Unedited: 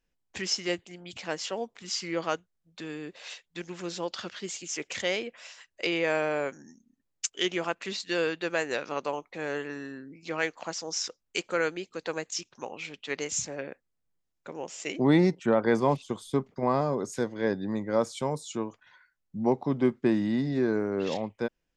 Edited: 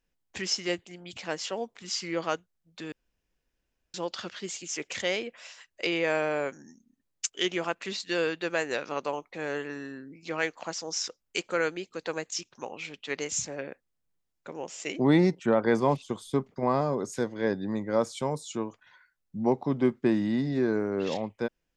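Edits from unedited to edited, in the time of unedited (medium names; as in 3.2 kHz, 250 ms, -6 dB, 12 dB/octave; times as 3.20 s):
2.92–3.94 s: room tone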